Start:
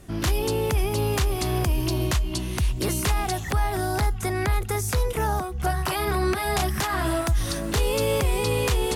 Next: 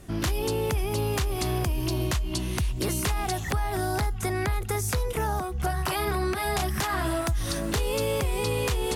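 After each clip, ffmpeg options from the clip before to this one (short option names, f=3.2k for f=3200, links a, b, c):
-af "acompressor=threshold=-23dB:ratio=6"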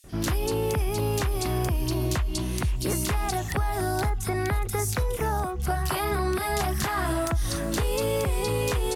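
-filter_complex "[0:a]acrossover=split=3100[a][b];[a]adelay=40[c];[c][b]amix=inputs=2:normalize=0,volume=1dB"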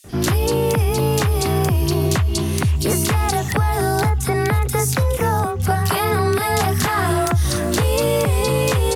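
-af "afreqshift=26,volume=8dB"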